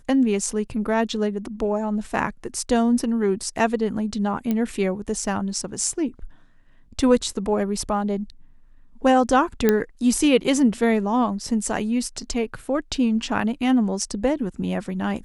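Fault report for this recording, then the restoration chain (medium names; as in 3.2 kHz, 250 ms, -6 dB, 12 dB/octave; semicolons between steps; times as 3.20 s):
4.51 s: pop -12 dBFS
9.69 s: pop -5 dBFS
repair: de-click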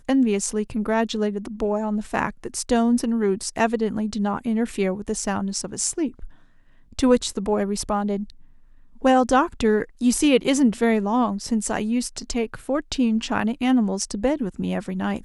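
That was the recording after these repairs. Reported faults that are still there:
nothing left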